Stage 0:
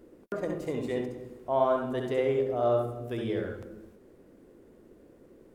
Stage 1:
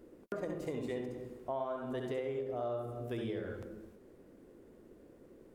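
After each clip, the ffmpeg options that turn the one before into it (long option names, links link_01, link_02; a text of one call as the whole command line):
ffmpeg -i in.wav -af "acompressor=threshold=-32dB:ratio=6,volume=-2.5dB" out.wav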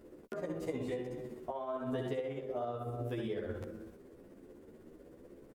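ffmpeg -i in.wav -filter_complex "[0:a]tremolo=f=16:d=0.44,alimiter=level_in=7.5dB:limit=-24dB:level=0:latency=1:release=318,volume=-7.5dB,asplit=2[link_01][link_02];[link_02]adelay=11.5,afreqshift=0.91[link_03];[link_01][link_03]amix=inputs=2:normalize=1,volume=7.5dB" out.wav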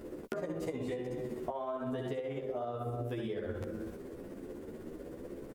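ffmpeg -i in.wav -af "acompressor=threshold=-45dB:ratio=5,volume=10dB" out.wav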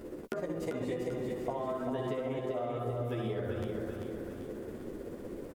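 ffmpeg -i in.wav -af "aecho=1:1:392|784|1176|1568|1960|2352:0.562|0.287|0.146|0.0746|0.038|0.0194,volume=1dB" out.wav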